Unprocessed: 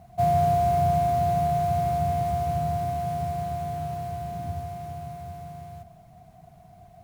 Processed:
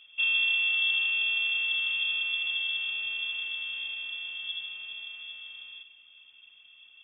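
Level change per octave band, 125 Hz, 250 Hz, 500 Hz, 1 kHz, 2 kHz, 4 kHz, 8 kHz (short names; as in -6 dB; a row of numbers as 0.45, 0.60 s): under -40 dB, under -30 dB, under -35 dB, -33.0 dB, +20.0 dB, +22.0 dB, under -35 dB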